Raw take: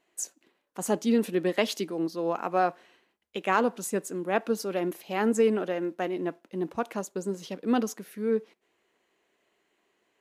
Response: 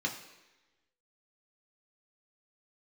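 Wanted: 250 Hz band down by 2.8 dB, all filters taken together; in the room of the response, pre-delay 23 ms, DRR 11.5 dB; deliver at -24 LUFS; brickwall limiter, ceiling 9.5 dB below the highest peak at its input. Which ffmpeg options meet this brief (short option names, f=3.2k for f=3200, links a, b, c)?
-filter_complex "[0:a]equalizer=f=250:t=o:g=-3.5,alimiter=limit=-20dB:level=0:latency=1,asplit=2[a][b];[1:a]atrim=start_sample=2205,adelay=23[c];[b][c]afir=irnorm=-1:irlink=0,volume=-16.5dB[d];[a][d]amix=inputs=2:normalize=0,volume=8.5dB"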